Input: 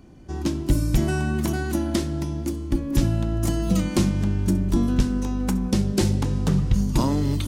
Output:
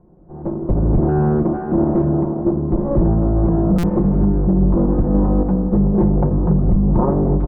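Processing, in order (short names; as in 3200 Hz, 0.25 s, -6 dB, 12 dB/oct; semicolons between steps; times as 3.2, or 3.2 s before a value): minimum comb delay 5.6 ms; random-step tremolo; LPF 1000 Hz 24 dB/oct; limiter -22 dBFS, peak gain reduction 10.5 dB; echo 0.467 s -15.5 dB; AGC gain up to 14 dB; stuck buffer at 3.78, samples 256, times 8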